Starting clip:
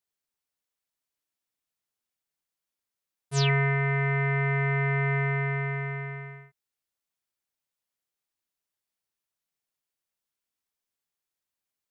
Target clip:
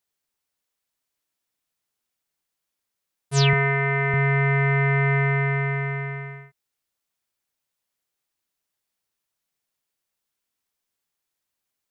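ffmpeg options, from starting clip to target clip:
-filter_complex "[0:a]asettb=1/sr,asplit=3[a][b][c];[a]atrim=end=3.534[d];[b]atrim=start=3.53:end=4.14,asetpts=PTS-STARTPTS,afade=t=in:d=0.004:c=qsin,afade=t=out:st=0.606:d=0.004:c=qsin,highpass=160,lowpass=4.6k[e];[c]atrim=start=4.136[f];[d][e]acrossfade=d=0.004:c1=hsin:c2=qsin[g];[g][f]acrossfade=d=0.004:c1=qsin:c2=hsin,volume=5.5dB"

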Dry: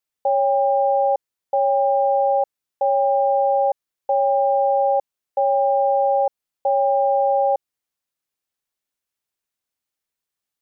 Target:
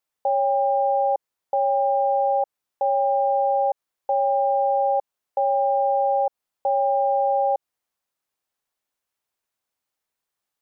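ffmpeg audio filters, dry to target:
-af "equalizer=f=850:w=0.74:g=6,alimiter=limit=-14.5dB:level=0:latency=1:release=87"

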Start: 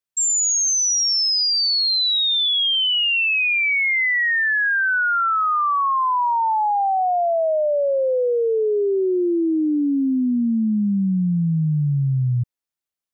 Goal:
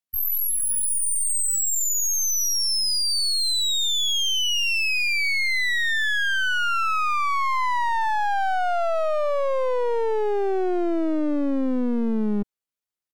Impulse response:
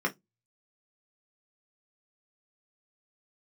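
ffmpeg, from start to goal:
-af "aeval=exprs='clip(val(0),-1,0.0224)':c=same,asetrate=74167,aresample=44100,atempo=0.594604"

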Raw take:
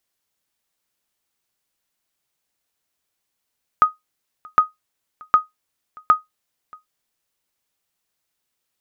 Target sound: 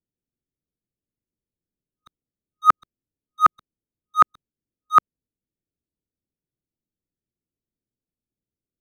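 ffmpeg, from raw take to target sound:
-filter_complex "[0:a]areverse,acrossover=split=400[a][b];[b]aeval=exprs='sgn(val(0))*max(abs(val(0))-0.015,0)':c=same[c];[a][c]amix=inputs=2:normalize=0,volume=3dB"

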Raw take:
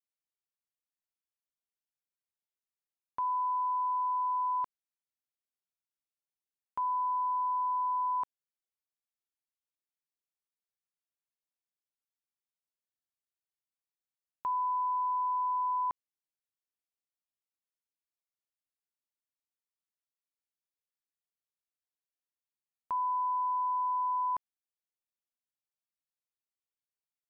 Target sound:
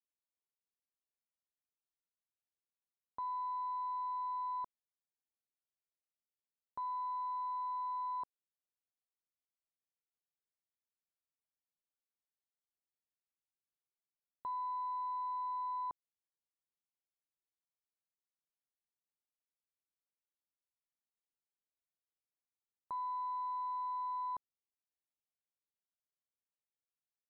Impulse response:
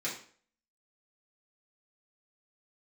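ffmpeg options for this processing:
-af "lowpass=1k,aeval=exprs='0.0299*(cos(1*acos(clip(val(0)/0.0299,-1,1)))-cos(1*PI/2))+0.000473*(cos(2*acos(clip(val(0)/0.0299,-1,1)))-cos(2*PI/2))+0.000596*(cos(4*acos(clip(val(0)/0.0299,-1,1)))-cos(4*PI/2))':c=same,volume=-5dB"

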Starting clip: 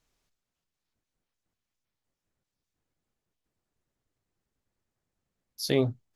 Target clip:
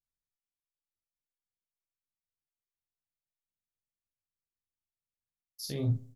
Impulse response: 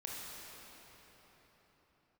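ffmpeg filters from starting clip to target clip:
-filter_complex "[0:a]agate=range=-33dB:threshold=-51dB:ratio=3:detection=peak,areverse,acompressor=threshold=-41dB:ratio=4,areverse,bass=f=250:g=12,treble=f=4k:g=9,asplit=2[a][b];[b]adelay=42,volume=-3.5dB[c];[a][c]amix=inputs=2:normalize=0,asplit=2[d][e];[e]adelay=69,lowpass=f=2.2k:p=1,volume=-20.5dB,asplit=2[f][g];[g]adelay=69,lowpass=f=2.2k:p=1,volume=0.53,asplit=2[h][i];[i]adelay=69,lowpass=f=2.2k:p=1,volume=0.53,asplit=2[j][k];[k]adelay=69,lowpass=f=2.2k:p=1,volume=0.53[l];[d][f][h][j][l]amix=inputs=5:normalize=0"

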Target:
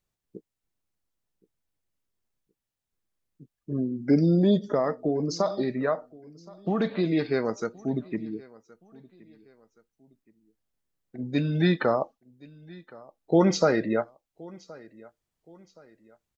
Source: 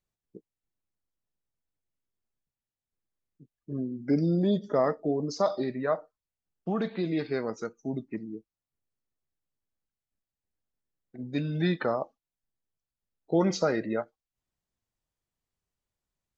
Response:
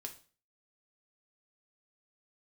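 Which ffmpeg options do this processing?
-filter_complex "[0:a]asettb=1/sr,asplit=3[a][b][c];[a]atrim=end=4.714[d];[b]atrim=start=4.71:end=6.8,asetpts=PTS-STARTPTS,afade=t=in:d=0.004:c=qsin,afade=t=out:st=2.086:d=0.004:c=qsin,acompressor=threshold=-26dB:ratio=4[e];[c]atrim=start=6.796[f];[d][e]acrossfade=d=0.004:c1=hsin:c2=qsin[g];[g][f]acrossfade=d=0.004:c1=qsin:c2=hsin,asplit=2[h][i];[i]aecho=0:1:1071|2142:0.0708|0.0262[j];[h][j]amix=inputs=2:normalize=0,volume=4.5dB"

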